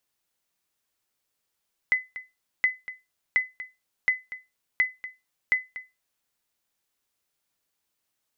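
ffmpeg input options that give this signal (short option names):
-f lavfi -i "aevalsrc='0.211*(sin(2*PI*2020*mod(t,0.72))*exp(-6.91*mod(t,0.72)/0.22)+0.178*sin(2*PI*2020*max(mod(t,0.72)-0.24,0))*exp(-6.91*max(mod(t,0.72)-0.24,0)/0.22))':d=4.32:s=44100"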